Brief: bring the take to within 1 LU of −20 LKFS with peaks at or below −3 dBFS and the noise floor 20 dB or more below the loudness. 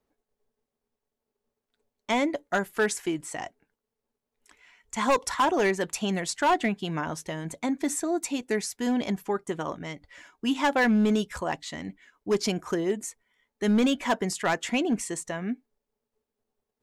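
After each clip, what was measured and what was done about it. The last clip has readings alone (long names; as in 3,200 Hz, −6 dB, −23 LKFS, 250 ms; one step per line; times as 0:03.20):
share of clipped samples 0.9%; peaks flattened at −17.5 dBFS; integrated loudness −27.5 LKFS; sample peak −17.5 dBFS; target loudness −20.0 LKFS
→ clipped peaks rebuilt −17.5 dBFS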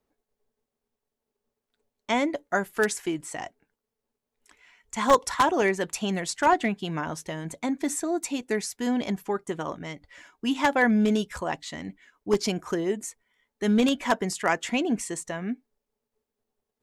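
share of clipped samples 0.0%; integrated loudness −26.5 LKFS; sample peak −8.5 dBFS; target loudness −20.0 LKFS
→ level +6.5 dB
brickwall limiter −3 dBFS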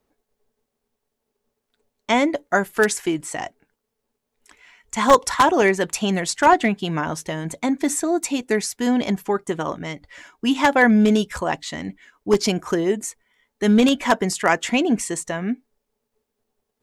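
integrated loudness −20.5 LKFS; sample peak −3.0 dBFS; background noise floor −80 dBFS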